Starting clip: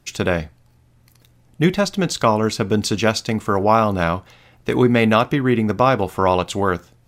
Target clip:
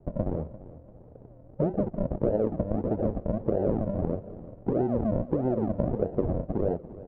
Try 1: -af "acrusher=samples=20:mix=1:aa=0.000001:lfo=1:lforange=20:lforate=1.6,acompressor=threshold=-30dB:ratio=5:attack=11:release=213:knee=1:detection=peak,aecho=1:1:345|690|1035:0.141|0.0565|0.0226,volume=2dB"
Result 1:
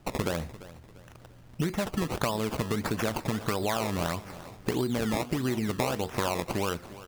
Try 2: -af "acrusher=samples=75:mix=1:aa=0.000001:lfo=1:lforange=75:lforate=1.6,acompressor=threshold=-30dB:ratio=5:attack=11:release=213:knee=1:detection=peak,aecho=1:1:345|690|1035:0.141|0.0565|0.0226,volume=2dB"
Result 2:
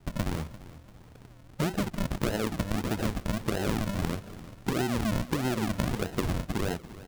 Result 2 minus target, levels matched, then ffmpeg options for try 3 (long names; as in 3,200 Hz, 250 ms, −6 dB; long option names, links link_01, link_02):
500 Hz band −4.5 dB
-af "acrusher=samples=75:mix=1:aa=0.000001:lfo=1:lforange=75:lforate=1.6,acompressor=threshold=-30dB:ratio=5:attack=11:release=213:knee=1:detection=peak,lowpass=frequency=560:width_type=q:width=2.9,aecho=1:1:345|690|1035:0.141|0.0565|0.0226,volume=2dB"